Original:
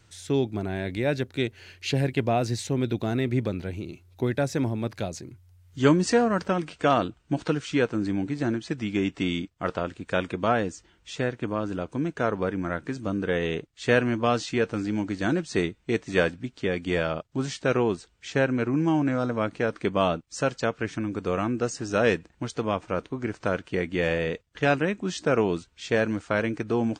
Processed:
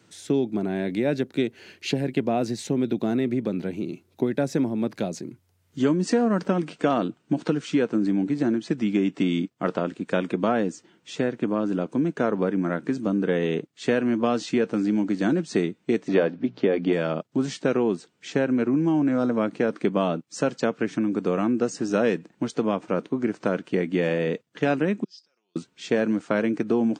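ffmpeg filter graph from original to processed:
ffmpeg -i in.wav -filter_complex "[0:a]asettb=1/sr,asplit=3[link_01][link_02][link_03];[link_01]atrim=end=16.084[link_04];[link_02]atrim=start=16.08:end=16.93,asetpts=PTS-STARTPTS,afade=type=in:duration=0.004:curve=qsin,afade=type=out:start_time=0.846:duration=0.004:curve=qsin,lowpass=frequency=5100:width=0.5412,lowpass=frequency=5100:width=1.3066,equalizer=frequency=610:width_type=o:width=2:gain=7.5,bandreject=frequency=60:width_type=h:width=6,bandreject=frequency=120:width_type=h:width=6,bandreject=frequency=180:width_type=h:width=6[link_05];[link_03]atrim=start=16.926[link_06];[link_04][link_05]acrossfade=duration=0.004:curve1=hsin:curve2=qsin[link_07];[link_07][link_06]acrossfade=duration=0.004:curve1=qsin:curve2=hsin,asettb=1/sr,asplit=3[link_08][link_09][link_10];[link_08]atrim=end=25.044[link_11];[link_09]atrim=start=25.04:end=25.56,asetpts=PTS-STARTPTS,afade=type=in:duration=0.004:curve=qsin,afade=type=out:start_time=0.516:duration=0.004:curve=qsin,acompressor=threshold=-30dB:ratio=10:attack=3.2:release=140:knee=1:detection=peak,bandpass=frequency=5000:width_type=q:width=19,aecho=1:1:5.6:0.43,atrim=end_sample=22932[link_12];[link_10]atrim=start=25.556[link_13];[link_11][link_12]acrossfade=duration=0.004:curve1=hsin:curve2=qsin[link_14];[link_14][link_13]acrossfade=duration=0.004:curve1=qsin:curve2=hsin,lowshelf=frequency=430:gain=11.5,acompressor=threshold=-17dB:ratio=6,highpass=frequency=180:width=0.5412,highpass=frequency=180:width=1.3066" out.wav

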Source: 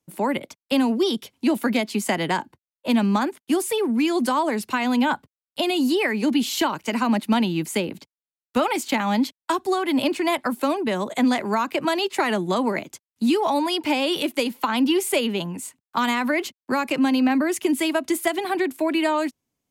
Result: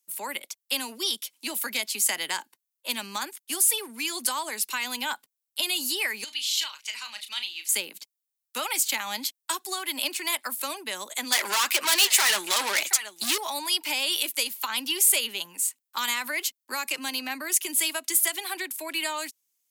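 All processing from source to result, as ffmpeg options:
ffmpeg -i in.wav -filter_complex "[0:a]asettb=1/sr,asplit=3[link_01][link_02][link_03];[link_01]atrim=end=6.244[link_04];[link_02]atrim=start=6.24:end=7.69,asetpts=PTS-STARTPTS,afade=type=in:duration=0.004:curve=qsin,afade=type=out:start_time=1.446:duration=0.004:curve=qsin,bandpass=frequency=3400:width_type=q:width=1.2,asplit=2[link_05][link_06];[link_06]adelay=34,volume=-9dB[link_07];[link_05][link_07]amix=inputs=2:normalize=0,atrim=end_sample=63945[link_08];[link_03]atrim=start=7.686[link_09];[link_04][link_08]acrossfade=duration=0.004:curve1=hsin:curve2=qsin[link_10];[link_10][link_09]acrossfade=duration=0.004:curve1=qsin:curve2=hsin,asettb=1/sr,asplit=3[link_11][link_12][link_13];[link_11]atrim=end=11.324[link_14];[link_12]atrim=start=11.32:end=13.38,asetpts=PTS-STARTPTS,afade=type=in:duration=0.004:curve=qsin,afade=type=out:start_time=2.056:duration=0.004:curve=qsin,aecho=1:1:725:0.075,atrim=end_sample=90846,flanger=delay=0.7:depth=6.1:regen=46:speed=1.9:shape=triangular,asplit=2[link_15][link_16];[link_16]highpass=frequency=720:poles=1,volume=27dB,asoftclip=type=tanh:threshold=-11.5dB[link_17];[link_15][link_17]amix=inputs=2:normalize=0,lowpass=frequency=7300:poles=1,volume=-6dB[link_18];[link_13]atrim=start=13.376[link_19];[link_14][link_18]acrossfade=duration=0.004:curve1=hsin:curve2=qsin[link_20];[link_20][link_19]acrossfade=duration=0.004:curve1=qsin:curve2=hsin,highpass=170,aderivative,bandreject=frequency=700:width=13,volume=8dB" out.wav

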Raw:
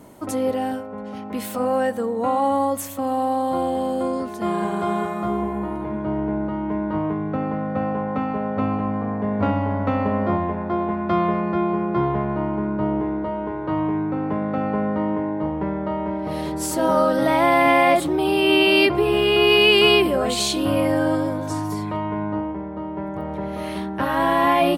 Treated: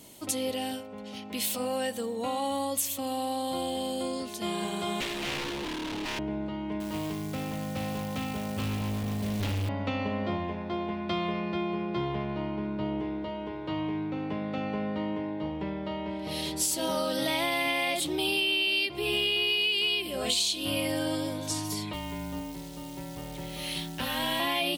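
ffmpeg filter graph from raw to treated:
ffmpeg -i in.wav -filter_complex "[0:a]asettb=1/sr,asplit=3[link_01][link_02][link_03];[link_01]atrim=end=5.004[link_04];[link_02]atrim=start=5:end=6.19,asetpts=PTS-STARTPTS,afade=type=in:duration=0.004:curve=qsin,afade=type=out:start_time=1.186:duration=0.004:curve=qsin,highpass=frequency=290:width_type=q:width=3.4,bandreject=frequency=570:width=7.6,aeval=exprs='0.0841*(abs(mod(val(0)/0.0841+3,4)-2)-1)':channel_layout=same[link_05];[link_03]atrim=start=6.186[link_06];[link_04][link_05]acrossfade=duration=0.004:curve1=hsin:curve2=qsin[link_07];[link_07][link_06]acrossfade=duration=0.004:curve1=qsin:curve2=hsin,asettb=1/sr,asplit=3[link_08][link_09][link_10];[link_08]atrim=end=6.804[link_11];[link_09]atrim=start=6.8:end=9.69,asetpts=PTS-STARTPTS,afade=type=in:duration=0.004:curve=qsin,afade=type=out:start_time=2.886:duration=0.004:curve=qsin,acrusher=bits=7:mode=log:mix=0:aa=0.000001,asubboost=boost=6.5:cutoff=160,asoftclip=type=hard:threshold=-19.5dB[link_12];[link_10]atrim=start=9.686[link_13];[link_11][link_12]acrossfade=duration=0.004:curve1=hsin:curve2=qsin[link_14];[link_14][link_13]acrossfade=duration=0.004:curve1=qsin:curve2=hsin,asettb=1/sr,asplit=3[link_15][link_16][link_17];[link_15]atrim=end=21.934[link_18];[link_16]atrim=start=21.93:end=24.4,asetpts=PTS-STARTPTS,afade=type=in:duration=0.004:curve=qsin,afade=type=out:start_time=2.466:duration=0.004:curve=qsin,equalizer=frequency=580:width_type=o:width=2.2:gain=-3.5,acrusher=bits=9:dc=4:mix=0:aa=0.000001,afreqshift=-30[link_19];[link_17]atrim=start=24.396[link_20];[link_18][link_19]acrossfade=duration=0.004:curve1=hsin:curve2=qsin[link_21];[link_21][link_20]acrossfade=duration=0.004:curve1=qsin:curve2=hsin,highshelf=frequency=2100:width_type=q:width=1.5:gain=13.5,acompressor=threshold=-16dB:ratio=10,volume=-8.5dB" out.wav

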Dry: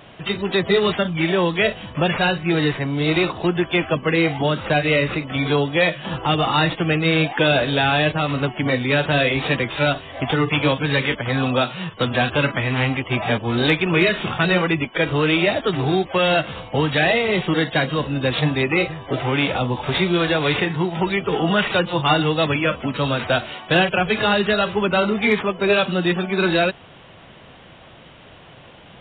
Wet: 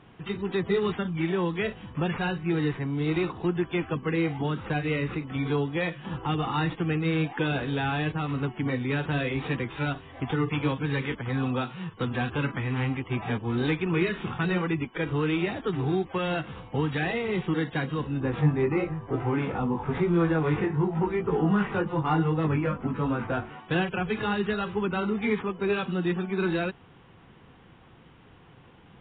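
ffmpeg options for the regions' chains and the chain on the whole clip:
ffmpeg -i in.wav -filter_complex "[0:a]asettb=1/sr,asplit=3[link_01][link_02][link_03];[link_01]atrim=end=18.204[link_04];[link_02]atrim=start=18.2:end=23.6,asetpts=PTS-STARTPTS,afade=type=in:duration=0.004:curve=qsin,afade=type=out:start_time=5.396:duration=0.004:curve=qsin,lowpass=1700,acontrast=65,flanger=delay=18:depth=2.4:speed=1[link_05];[link_03]atrim=start=23.596[link_06];[link_04][link_05]acrossfade=duration=0.004:curve1=hsin:curve2=qsin[link_07];[link_07][link_06]acrossfade=duration=0.004:curve1=qsin:curve2=hsin,lowpass=frequency=1100:poles=1,equalizer=frequency=610:width=4.4:gain=-14.5,volume=-5.5dB" out.wav

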